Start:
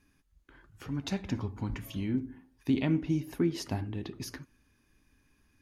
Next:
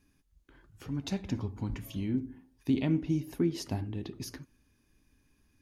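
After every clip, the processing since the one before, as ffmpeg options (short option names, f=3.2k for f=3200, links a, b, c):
-af "equalizer=f=1.5k:t=o:w=1.8:g=-5"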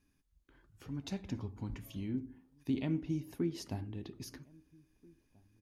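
-filter_complex "[0:a]asplit=2[a][b];[b]adelay=1633,volume=-26dB,highshelf=f=4k:g=-36.7[c];[a][c]amix=inputs=2:normalize=0,volume=-6dB"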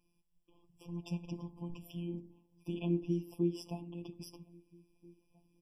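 -af "afftfilt=real='hypot(re,im)*cos(PI*b)':imag='0':win_size=1024:overlap=0.75,afftfilt=real='re*eq(mod(floor(b*sr/1024/1200),2),0)':imag='im*eq(mod(floor(b*sr/1024/1200),2),0)':win_size=1024:overlap=0.75,volume=3.5dB"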